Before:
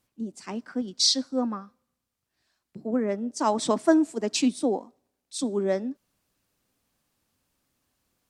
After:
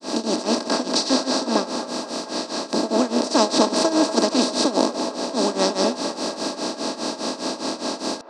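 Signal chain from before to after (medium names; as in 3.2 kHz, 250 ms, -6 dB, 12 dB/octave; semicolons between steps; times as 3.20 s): spectral levelling over time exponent 0.2; granulator 256 ms, grains 4.9 per s, pitch spread up and down by 0 st; feedback echo behind a band-pass 238 ms, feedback 62%, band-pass 890 Hz, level -11 dB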